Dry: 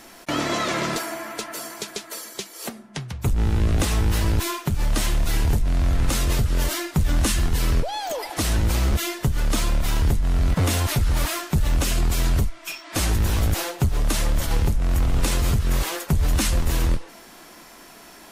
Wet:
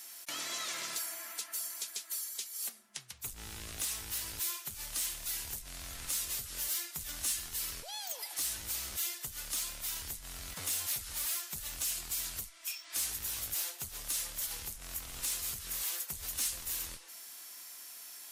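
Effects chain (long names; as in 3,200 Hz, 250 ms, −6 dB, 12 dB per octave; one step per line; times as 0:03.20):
first-order pre-emphasis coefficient 0.97
in parallel at 0 dB: downward compressor, threshold −43 dBFS, peak gain reduction 18.5 dB
on the sum: soft clipping −21.5 dBFS, distortion −17 dB
level −5 dB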